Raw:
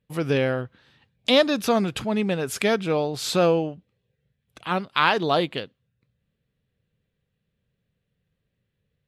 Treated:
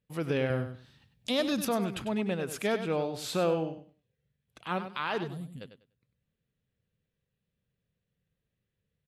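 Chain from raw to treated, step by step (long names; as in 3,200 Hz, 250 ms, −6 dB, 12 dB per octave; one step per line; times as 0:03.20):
0:00.50–0:01.65: bass and treble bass +9 dB, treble +10 dB
0:05.24–0:05.61: gain on a spectral selection 270–6,900 Hz −27 dB
brickwall limiter −12.5 dBFS, peak gain reduction 8.5 dB
on a send: repeating echo 98 ms, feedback 20%, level −10 dB
on the sum: dynamic equaliser 5,200 Hz, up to −4 dB, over −44 dBFS, Q 1.2
level −7 dB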